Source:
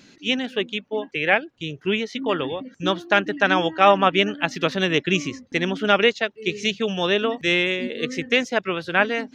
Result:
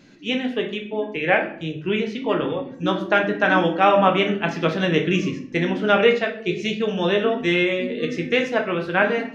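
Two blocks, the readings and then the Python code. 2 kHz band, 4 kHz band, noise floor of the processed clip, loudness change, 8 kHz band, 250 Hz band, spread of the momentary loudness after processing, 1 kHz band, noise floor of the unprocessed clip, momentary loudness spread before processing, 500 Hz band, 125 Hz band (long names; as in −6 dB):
−0.5 dB, −3.5 dB, −38 dBFS, +0.5 dB, can't be measured, +2.5 dB, 9 LU, +0.5 dB, −55 dBFS, 9 LU, +2.0 dB, +4.0 dB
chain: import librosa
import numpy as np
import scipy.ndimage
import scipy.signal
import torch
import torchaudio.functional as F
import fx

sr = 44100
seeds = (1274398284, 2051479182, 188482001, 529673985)

y = fx.high_shelf(x, sr, hz=2600.0, db=-9.0)
y = fx.room_shoebox(y, sr, seeds[0], volume_m3=81.0, walls='mixed', distance_m=0.57)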